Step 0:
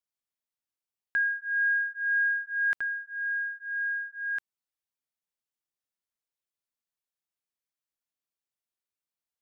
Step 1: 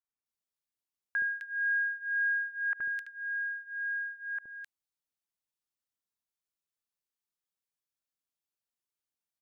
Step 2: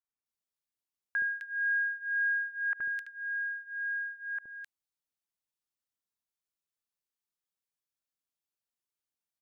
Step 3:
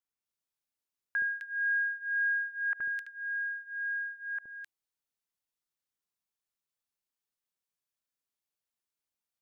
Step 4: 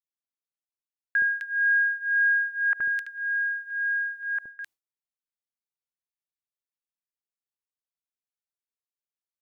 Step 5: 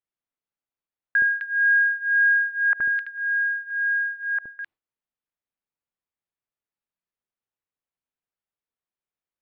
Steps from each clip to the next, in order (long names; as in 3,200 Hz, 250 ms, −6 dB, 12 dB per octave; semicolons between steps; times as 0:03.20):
three-band delay without the direct sound mids, lows, highs 70/260 ms, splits 580/2,100 Hz; level −1.5 dB
no processing that can be heard
hum removal 339.4 Hz, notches 2
noise gate with hold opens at −40 dBFS; level +7.5 dB
high-frequency loss of the air 400 metres; level +6.5 dB